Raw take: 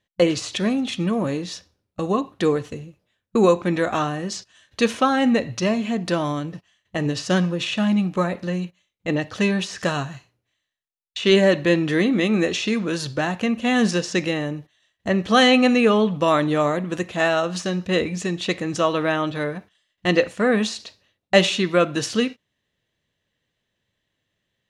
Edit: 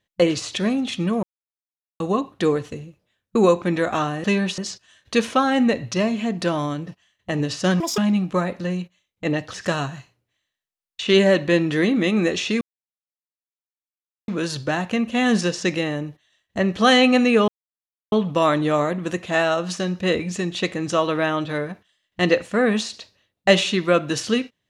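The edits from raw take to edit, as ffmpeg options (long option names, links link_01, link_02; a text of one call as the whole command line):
ffmpeg -i in.wav -filter_complex "[0:a]asplit=10[link_01][link_02][link_03][link_04][link_05][link_06][link_07][link_08][link_09][link_10];[link_01]atrim=end=1.23,asetpts=PTS-STARTPTS,afade=type=out:start_time=1.226:duration=0.004:curve=hsin[link_11];[link_02]atrim=start=1.23:end=2,asetpts=PTS-STARTPTS,volume=0[link_12];[link_03]atrim=start=2:end=4.242,asetpts=PTS-STARTPTS,afade=type=in:duration=0.004:curve=hsin[link_13];[link_04]atrim=start=9.368:end=9.712[link_14];[link_05]atrim=start=4.238:end=7.464[link_15];[link_06]atrim=start=7.46:end=7.81,asetpts=PTS-STARTPTS,asetrate=85554,aresample=44100,atrim=end_sample=7956,asetpts=PTS-STARTPTS[link_16];[link_07]atrim=start=7.806:end=9.372[link_17];[link_08]atrim=start=9.708:end=12.78,asetpts=PTS-STARTPTS,afade=type=out:start_time=3.068:duration=0.004:curve=hsin,apad=pad_dur=1.67[link_18];[link_09]atrim=start=12.78:end=15.98,asetpts=PTS-STARTPTS,afade=type=in:duration=0.004:curve=hsin,afade=type=out:start_time=3.196:duration=0.004:curve=hsin,apad=pad_dur=0.64[link_19];[link_10]atrim=start=15.98,asetpts=PTS-STARTPTS,afade=type=in:duration=0.004:curve=hsin[link_20];[link_11][link_12][link_13]concat=n=3:v=0:a=1[link_21];[link_21][link_14]acrossfade=duration=0.004:curve1=hsin:curve2=hsin[link_22];[link_22][link_15]acrossfade=duration=0.004:curve1=hsin:curve2=hsin[link_23];[link_23][link_16]acrossfade=duration=0.004:curve1=hsin:curve2=hsin[link_24];[link_24][link_17]acrossfade=duration=0.004:curve1=hsin:curve2=hsin[link_25];[link_18][link_19][link_20]concat=n=3:v=0:a=1[link_26];[link_25][link_26]acrossfade=duration=0.004:curve1=hsin:curve2=hsin" out.wav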